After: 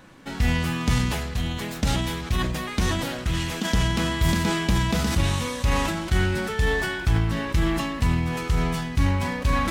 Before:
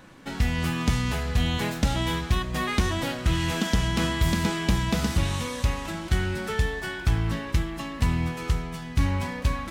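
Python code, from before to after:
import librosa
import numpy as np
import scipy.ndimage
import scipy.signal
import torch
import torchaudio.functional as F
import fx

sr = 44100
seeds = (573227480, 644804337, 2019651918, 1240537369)

y = fx.hpss(x, sr, part='harmonic', gain_db=-9, at=(0.98, 3.65))
y = fx.sustainer(y, sr, db_per_s=33.0)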